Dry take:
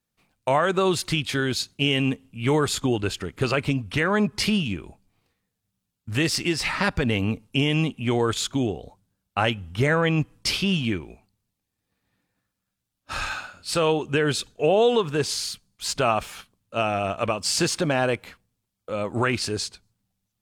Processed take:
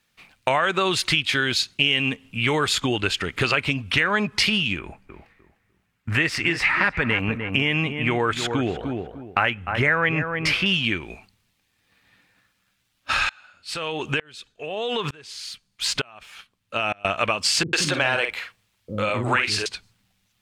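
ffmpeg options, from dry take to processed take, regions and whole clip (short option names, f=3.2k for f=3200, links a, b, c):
-filter_complex "[0:a]asettb=1/sr,asplit=3[a][b][c];[a]atrim=end=4.794[d];[b]atrim=start=4.79:end=10.66,asetpts=PTS-STARTPTS,afade=t=in:d=0.004:c=qsin,afade=t=out:st=5.866:d=0.004:c=qsin,highshelf=f=2.7k:t=q:w=1.5:g=-8,asplit=2[e][f];[f]adelay=301,lowpass=f=1.4k:p=1,volume=-10dB,asplit=2[g][h];[h]adelay=301,lowpass=f=1.4k:p=1,volume=0.23,asplit=2[i][j];[j]adelay=301,lowpass=f=1.4k:p=1,volume=0.23[k];[e][g][i][k]amix=inputs=4:normalize=0,atrim=end_sample=258867[l];[c]atrim=start=10.656[m];[d][l]acrossfade=d=0.004:c1=hsin:c2=qsin[n];[n][m]acrossfade=d=0.004:c1=qsin:c2=hsin,asettb=1/sr,asplit=3[o][p][q];[o]atrim=end=13.294[r];[p]atrim=start=13.29:end=17.05,asetpts=PTS-STARTPTS,afade=t=in:d=0.004:c=qsin,afade=t=out:st=3.756:d=0.004:c=qsin,acompressor=threshold=-23dB:ratio=6:attack=3.2:release=140:knee=1:detection=peak,aeval=exprs='val(0)*pow(10,-31*if(lt(mod(-1.1*n/s,1),2*abs(-1.1)/1000),1-mod(-1.1*n/s,1)/(2*abs(-1.1)/1000),(mod(-1.1*n/s,1)-2*abs(-1.1)/1000)/(1-2*abs(-1.1)/1000))/20)':c=same[s];[q]atrim=start=17.046[t];[r][s]acrossfade=d=0.004:c1=hsin:c2=qsin[u];[u][t]acrossfade=d=0.004:c1=qsin:c2=hsin,asettb=1/sr,asplit=3[v][w][x];[v]atrim=end=17.634[y];[w]atrim=start=17.63:end=19.66,asetpts=PTS-STARTPTS,afade=t=in:d=0.004:c=qsin,afade=t=out:st=2.026:d=0.004:c=qsin,asplit=2[z][aa];[aa]adelay=49,volume=-8dB[ab];[z][ab]amix=inputs=2:normalize=0,atrim=end_sample=89523,acrossover=split=320[ac][ad];[ad]adelay=100[ae];[ac][ae]amix=inputs=2:normalize=0,atrim=end_sample=89523[af];[x]atrim=start=19.656[ag];[y][af]acrossfade=d=0.004:c1=hsin:c2=qsin[ah];[ah][ag]acrossfade=d=0.004:c1=qsin:c2=hsin,equalizer=f=2.4k:t=o:w=2.4:g=12.5,acompressor=threshold=-31dB:ratio=2.5,volume=7dB"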